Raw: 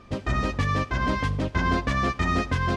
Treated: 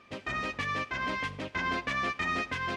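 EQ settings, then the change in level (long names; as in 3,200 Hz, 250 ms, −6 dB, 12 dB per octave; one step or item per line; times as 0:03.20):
high-pass filter 330 Hz 6 dB per octave
parametric band 2,400 Hz +8 dB 1.1 octaves
−7.0 dB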